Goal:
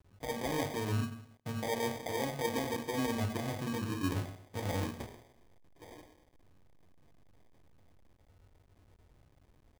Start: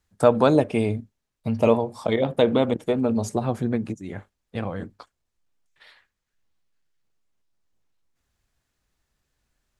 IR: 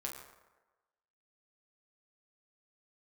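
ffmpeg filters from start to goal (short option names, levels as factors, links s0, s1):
-filter_complex "[0:a]equalizer=f=4400:w=1.2:g=-13,areverse,acompressor=threshold=0.0282:ratio=16,areverse,alimiter=level_in=1.5:limit=0.0631:level=0:latency=1:release=112,volume=0.668,acrossover=split=200|1600[s0][s1][s2];[s0]acompressor=mode=upward:threshold=0.002:ratio=2.5[s3];[s3][s1][s2]amix=inputs=3:normalize=0[s4];[1:a]atrim=start_sample=2205,asetrate=61740,aresample=44100[s5];[s4][s5]afir=irnorm=-1:irlink=0,acrusher=bits=11:mix=0:aa=0.000001,aresample=16000,aresample=44100,acrusher=samples=32:mix=1:aa=0.000001,aecho=1:1:124:0.0668,volume=2.24"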